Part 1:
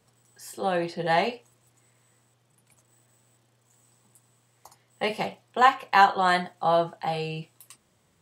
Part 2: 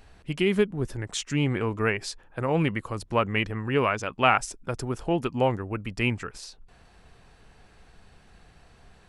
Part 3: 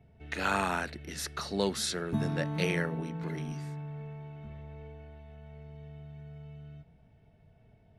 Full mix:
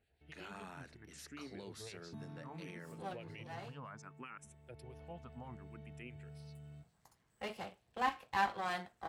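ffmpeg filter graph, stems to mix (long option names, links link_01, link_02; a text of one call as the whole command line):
ffmpeg -i stem1.wav -i stem2.wav -i stem3.wav -filter_complex "[0:a]aeval=exprs='if(lt(val(0),0),0.251*val(0),val(0))':channel_layout=same,adelay=2400,volume=-12dB[link_01];[1:a]acrossover=split=1900[link_02][link_03];[link_02]aeval=exprs='val(0)*(1-0.7/2+0.7/2*cos(2*PI*7.6*n/s))':channel_layout=same[link_04];[link_03]aeval=exprs='val(0)*(1-0.7/2-0.7/2*cos(2*PI*7.6*n/s))':channel_layout=same[link_05];[link_04][link_05]amix=inputs=2:normalize=0,asplit=2[link_06][link_07];[link_07]afreqshift=0.65[link_08];[link_06][link_08]amix=inputs=2:normalize=1,volume=-17.5dB,asplit=2[link_09][link_10];[2:a]agate=range=-13dB:threshold=-53dB:ratio=16:detection=peak,volume=-5.5dB,afade=type=in:start_time=4.72:duration=0.26:silence=0.281838[link_11];[link_10]apad=whole_len=472575[link_12];[link_01][link_12]sidechaincompress=threshold=-58dB:ratio=8:attack=5.6:release=246[link_13];[link_09][link_11]amix=inputs=2:normalize=0,alimiter=level_in=15dB:limit=-24dB:level=0:latency=1:release=45,volume=-15dB,volume=0dB[link_14];[link_13][link_14]amix=inputs=2:normalize=0,highpass=62" out.wav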